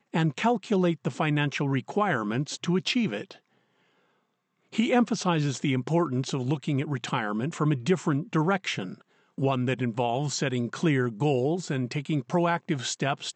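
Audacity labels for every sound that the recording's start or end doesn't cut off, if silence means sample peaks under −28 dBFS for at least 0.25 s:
4.750000	8.850000	sound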